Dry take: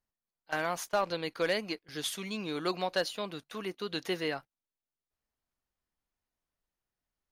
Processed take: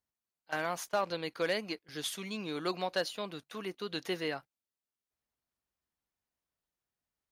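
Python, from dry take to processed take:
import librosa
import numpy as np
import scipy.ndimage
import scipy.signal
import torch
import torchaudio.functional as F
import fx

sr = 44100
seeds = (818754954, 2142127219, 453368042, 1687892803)

y = scipy.signal.sosfilt(scipy.signal.butter(2, 52.0, 'highpass', fs=sr, output='sos'), x)
y = y * librosa.db_to_amplitude(-2.0)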